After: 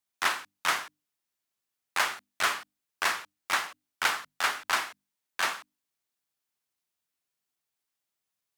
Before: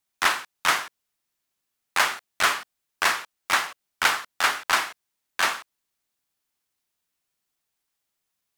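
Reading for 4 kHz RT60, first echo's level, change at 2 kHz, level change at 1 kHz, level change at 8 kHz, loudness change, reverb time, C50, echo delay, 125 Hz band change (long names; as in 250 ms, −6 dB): no reverb audible, no echo audible, −5.5 dB, −5.5 dB, −5.5 dB, −5.5 dB, no reverb audible, no reverb audible, no echo audible, can't be measured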